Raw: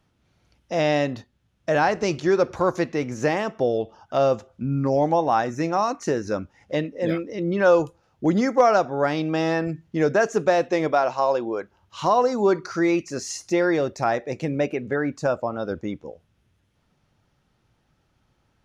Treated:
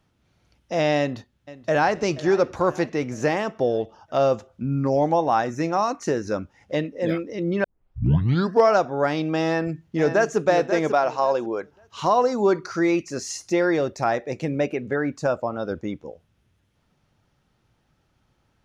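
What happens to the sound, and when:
0.99–1.93 echo throw 0.48 s, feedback 55%, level -17 dB
7.64 tape start 1.07 s
9.44–10.38 echo throw 0.54 s, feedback 20%, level -8.5 dB

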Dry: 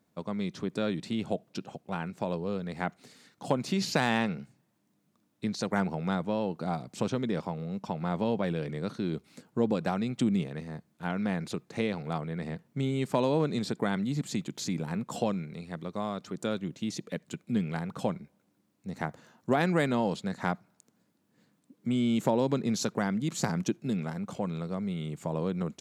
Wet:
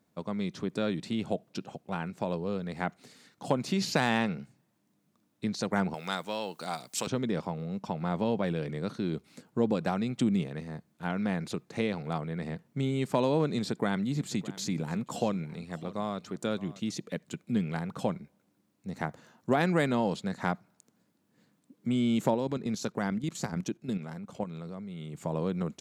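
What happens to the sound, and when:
5.94–7.07 tilt +4.5 dB/oct
13.51–16.91 echo 0.612 s -18 dB
22.34–25.15 level quantiser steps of 10 dB

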